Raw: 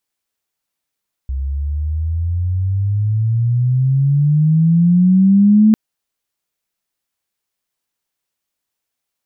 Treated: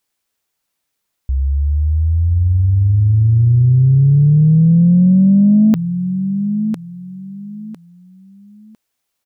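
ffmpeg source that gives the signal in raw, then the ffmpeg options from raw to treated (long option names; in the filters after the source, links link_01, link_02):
-f lavfi -i "aevalsrc='pow(10,(-6+12*(t/4.45-1))/20)*sin(2*PI*65.3*4.45/(21*log(2)/12)*(exp(21*log(2)/12*t/4.45)-1))':duration=4.45:sample_rate=44100"
-af "aecho=1:1:1003|2006|3009:0.224|0.056|0.014,alimiter=limit=-10.5dB:level=0:latency=1:release=18,acontrast=32"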